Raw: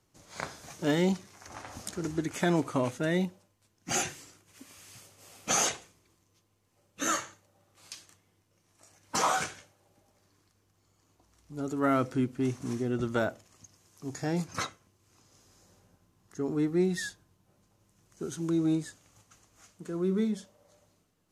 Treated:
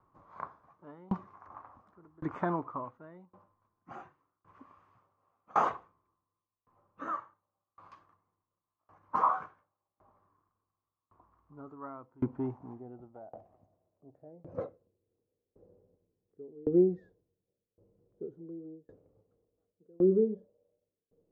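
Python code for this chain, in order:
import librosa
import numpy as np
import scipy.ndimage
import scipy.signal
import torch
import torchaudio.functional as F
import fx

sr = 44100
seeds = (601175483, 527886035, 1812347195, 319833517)

y = fx.filter_sweep_lowpass(x, sr, from_hz=1100.0, to_hz=470.0, start_s=11.7, end_s=15.08, q=6.4)
y = fx.tremolo_decay(y, sr, direction='decaying', hz=0.9, depth_db=31)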